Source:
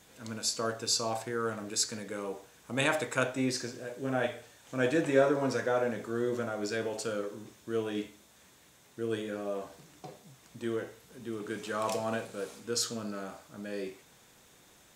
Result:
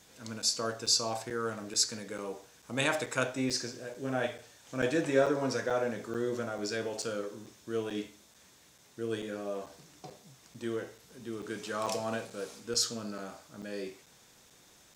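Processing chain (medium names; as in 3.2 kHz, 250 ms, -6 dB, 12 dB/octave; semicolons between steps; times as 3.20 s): peaking EQ 5.3 kHz +5.5 dB 0.81 oct; crackling interface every 0.44 s, samples 256, zero, from 0.42 s; trim -1.5 dB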